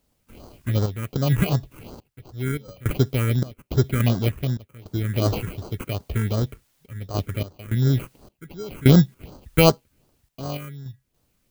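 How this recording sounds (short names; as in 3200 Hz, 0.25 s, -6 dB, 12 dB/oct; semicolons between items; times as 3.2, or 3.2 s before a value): aliases and images of a low sample rate 1800 Hz, jitter 0%; phasing stages 4, 2.7 Hz, lowest notch 720–2400 Hz; a quantiser's noise floor 12-bit, dither triangular; random-step tremolo, depth 95%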